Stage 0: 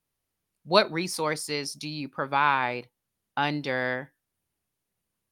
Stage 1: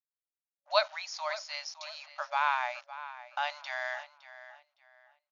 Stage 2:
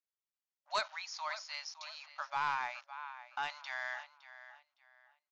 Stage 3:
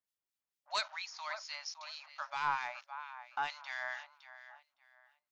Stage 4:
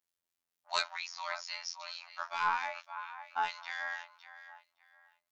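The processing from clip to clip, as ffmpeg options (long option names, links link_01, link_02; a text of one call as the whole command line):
ffmpeg -i in.wav -filter_complex "[0:a]acrusher=bits=6:mix=0:aa=0.5,asplit=2[link_01][link_02];[link_02]adelay=562,lowpass=frequency=4200:poles=1,volume=-14dB,asplit=2[link_03][link_04];[link_04]adelay=562,lowpass=frequency=4200:poles=1,volume=0.29,asplit=2[link_05][link_06];[link_06]adelay=562,lowpass=frequency=4200:poles=1,volume=0.29[link_07];[link_01][link_03][link_05][link_07]amix=inputs=4:normalize=0,afftfilt=real='re*between(b*sr/4096,570,7000)':imag='im*between(b*sr/4096,570,7000)':win_size=4096:overlap=0.75,volume=-5.5dB" out.wav
ffmpeg -i in.wav -af "lowshelf=frequency=730:width_type=q:width=1.5:gain=-7,aresample=16000,asoftclip=type=tanh:threshold=-21.5dB,aresample=44100,volume=-4dB" out.wav
ffmpeg -i in.wav -filter_complex "[0:a]acrossover=split=1800[link_01][link_02];[link_01]aeval=exprs='val(0)*(1-0.7/2+0.7/2*cos(2*PI*4.4*n/s))':channel_layout=same[link_03];[link_02]aeval=exprs='val(0)*(1-0.7/2-0.7/2*cos(2*PI*4.4*n/s))':channel_layout=same[link_04];[link_03][link_04]amix=inputs=2:normalize=0,volume=3.5dB" out.wav
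ffmpeg -i in.wav -af "afftfilt=real='hypot(re,im)*cos(PI*b)':imag='0':win_size=2048:overlap=0.75,volume=6dB" out.wav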